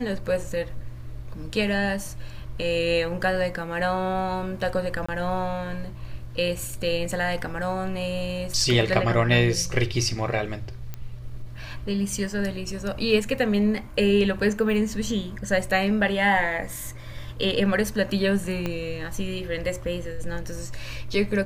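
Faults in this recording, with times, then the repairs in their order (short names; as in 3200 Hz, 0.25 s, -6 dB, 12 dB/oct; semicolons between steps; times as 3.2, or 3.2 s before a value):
5.06–5.08 gap 25 ms
10.94 pop -19 dBFS
18.66 pop -14 dBFS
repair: de-click; interpolate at 5.06, 25 ms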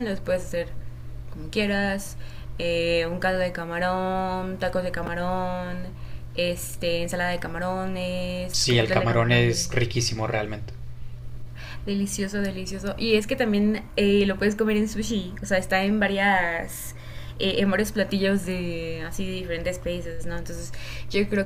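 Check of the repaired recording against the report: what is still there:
18.66 pop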